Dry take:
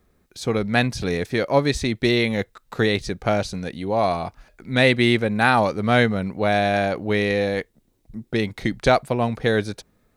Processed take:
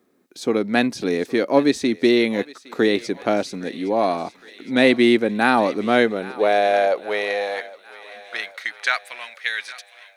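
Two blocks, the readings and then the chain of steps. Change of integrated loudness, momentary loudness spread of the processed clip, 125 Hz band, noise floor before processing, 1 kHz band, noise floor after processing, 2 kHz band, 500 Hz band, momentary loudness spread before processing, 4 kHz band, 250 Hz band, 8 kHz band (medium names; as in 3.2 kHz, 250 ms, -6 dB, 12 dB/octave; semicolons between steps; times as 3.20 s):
+1.0 dB, 14 LU, -12.5 dB, -65 dBFS, 0.0 dB, -52 dBFS, 0.0 dB, +1.5 dB, 11 LU, -0.5 dB, +2.0 dB, -1.0 dB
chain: high-pass sweep 280 Hz -> 2.1 kHz, 5.79–9.28 s; thinning echo 813 ms, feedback 74%, high-pass 780 Hz, level -17 dB; trim -1 dB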